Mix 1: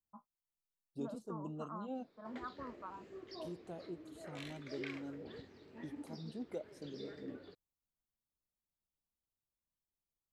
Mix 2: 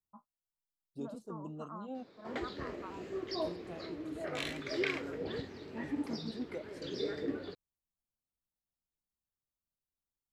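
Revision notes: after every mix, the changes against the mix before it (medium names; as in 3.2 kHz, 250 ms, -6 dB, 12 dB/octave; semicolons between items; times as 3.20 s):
background +11.5 dB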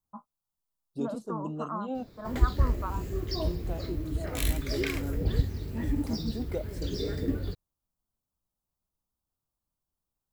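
first voice +11.5 dB; second voice +8.5 dB; background: remove band-pass 340–3800 Hz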